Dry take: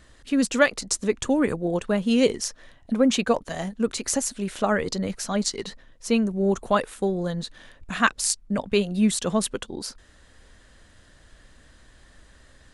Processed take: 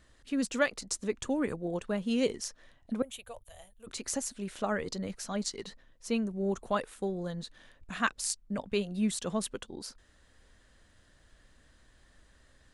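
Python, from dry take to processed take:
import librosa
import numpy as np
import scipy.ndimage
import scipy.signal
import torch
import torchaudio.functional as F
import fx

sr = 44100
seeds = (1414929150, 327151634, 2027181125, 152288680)

y = fx.curve_eq(x, sr, hz=(110.0, 170.0, 310.0, 590.0, 1000.0, 1700.0, 3400.0, 5000.0, 13000.0), db=(0, -29, -26, -11, -15, -16, -6, -20, 14), at=(3.02, 3.87))
y = y * 10.0 ** (-9.0 / 20.0)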